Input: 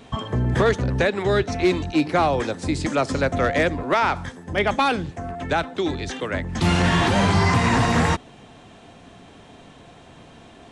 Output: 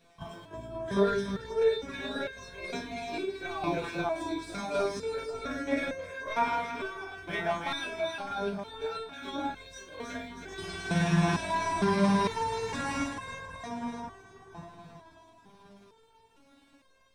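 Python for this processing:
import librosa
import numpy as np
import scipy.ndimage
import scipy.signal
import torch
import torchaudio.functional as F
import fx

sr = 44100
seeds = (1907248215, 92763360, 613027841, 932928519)

y = fx.ripple_eq(x, sr, per_octave=1.6, db=8)
y = np.sign(y) * np.maximum(np.abs(y) - 10.0 ** (-48.5 / 20.0), 0.0)
y = fx.echo_split(y, sr, split_hz=1400.0, low_ms=334, high_ms=198, feedback_pct=52, wet_db=-4)
y = fx.stretch_grains(y, sr, factor=1.6, grain_ms=108.0)
y = fx.resonator_held(y, sr, hz=2.2, low_hz=170.0, high_hz=530.0)
y = y * 10.0 ** (2.5 / 20.0)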